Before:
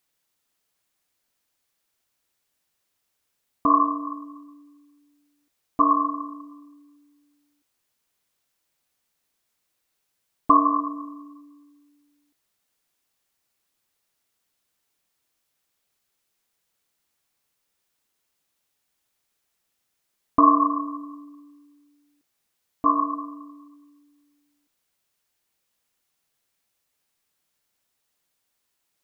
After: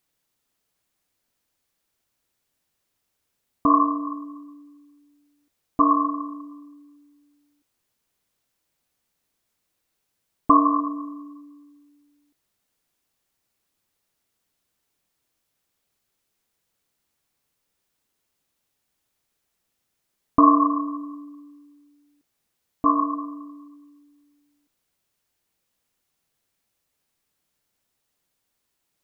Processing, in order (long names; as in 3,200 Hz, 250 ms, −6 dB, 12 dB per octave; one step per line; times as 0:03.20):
low-shelf EQ 500 Hz +6 dB
level −1 dB